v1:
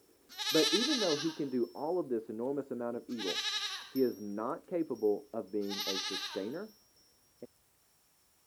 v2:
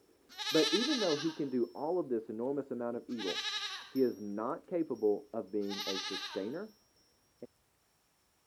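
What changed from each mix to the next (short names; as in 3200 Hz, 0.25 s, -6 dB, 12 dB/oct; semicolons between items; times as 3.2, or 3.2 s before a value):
master: add high shelf 6300 Hz -9 dB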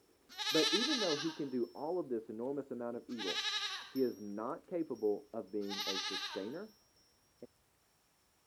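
speech -4.0 dB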